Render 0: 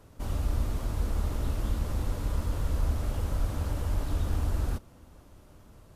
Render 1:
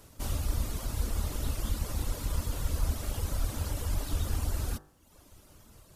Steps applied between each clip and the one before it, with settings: reverb removal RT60 0.93 s; treble shelf 3.1 kHz +11.5 dB; de-hum 50.28 Hz, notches 37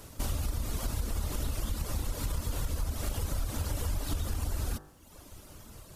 in parallel at 0 dB: peak limiter -25 dBFS, peak gain reduction 8 dB; on the sum: compression, threshold -28 dBFS, peak gain reduction 9 dB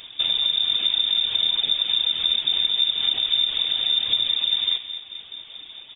feedback delay 220 ms, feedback 58%, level -12 dB; frequency inversion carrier 3.6 kHz; trim +7 dB

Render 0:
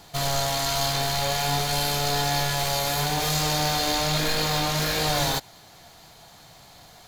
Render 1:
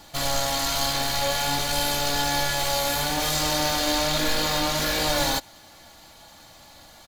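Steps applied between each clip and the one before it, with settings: comb 3.5 ms, depth 53%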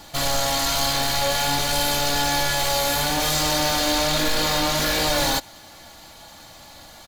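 saturation -19 dBFS, distortion -17 dB; trim +4.5 dB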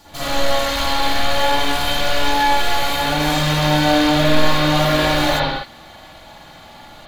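reverberation, pre-delay 46 ms, DRR -11 dB; trim -6 dB

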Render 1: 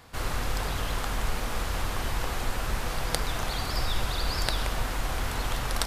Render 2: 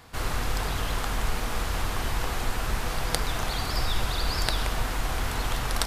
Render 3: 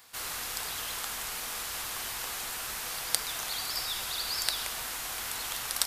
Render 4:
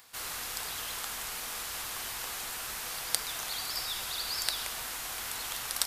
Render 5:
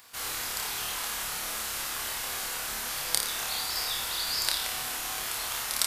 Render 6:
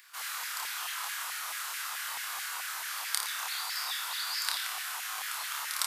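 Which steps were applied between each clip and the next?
band-stop 550 Hz, Q 17; trim +1.5 dB
tilt EQ +4 dB/octave; trim -8.5 dB
upward compressor, threshold -55 dBFS; trim -1.5 dB
flutter echo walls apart 4.8 m, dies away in 0.5 s; trim +1.5 dB
LFO high-pass saw down 4.6 Hz 880–1900 Hz; trim -5 dB

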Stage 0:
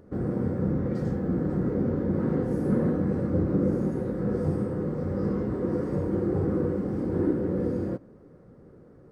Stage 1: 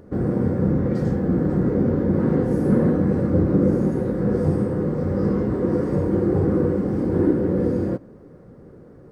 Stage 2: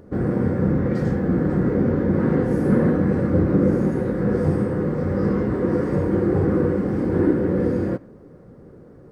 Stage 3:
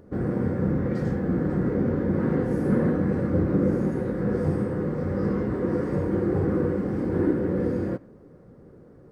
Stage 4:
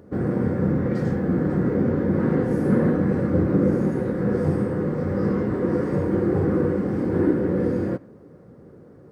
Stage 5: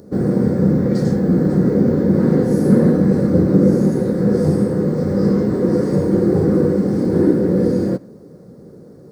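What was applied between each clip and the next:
band-stop 1.3 kHz, Q 25; trim +6.5 dB
dynamic bell 1.9 kHz, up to +6 dB, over -45 dBFS, Q 0.93
short-mantissa float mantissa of 8-bit; trim -4.5 dB
high-pass 73 Hz; trim +3 dB
FFT filter 100 Hz 0 dB, 190 Hz +7 dB, 290 Hz +3 dB, 450 Hz +5 dB, 1.1 kHz -2 dB, 2.9 kHz -2 dB, 4.3 kHz +12 dB; trim +2 dB

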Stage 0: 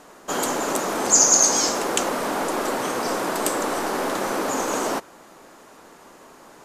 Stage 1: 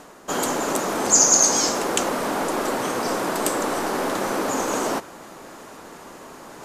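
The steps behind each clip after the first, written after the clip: peaking EQ 99 Hz +3.5 dB 2.5 oct; reverse; upward compressor, threshold -33 dBFS; reverse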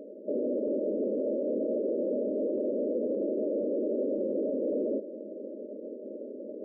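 bass shelf 380 Hz -8 dB; FFT band-pass 200–630 Hz; peak limiter -31.5 dBFS, peak gain reduction 11.5 dB; trim +8.5 dB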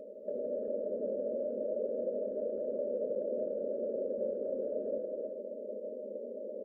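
comb 1.6 ms, depth 77%; compression, threshold -30 dBFS, peak gain reduction 6.5 dB; gated-style reverb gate 400 ms rising, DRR 1 dB; trim -4 dB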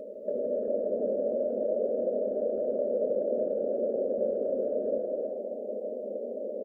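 frequency-shifting echo 141 ms, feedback 55%, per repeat +39 Hz, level -15.5 dB; trim +6 dB

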